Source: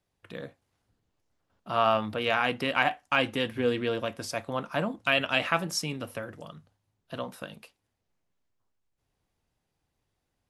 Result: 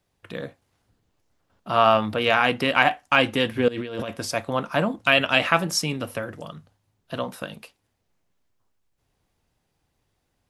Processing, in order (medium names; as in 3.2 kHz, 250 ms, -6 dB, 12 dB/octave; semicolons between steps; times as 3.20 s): 3.68–4.09 s: compressor with a negative ratio -38 dBFS, ratio -1; trim +6.5 dB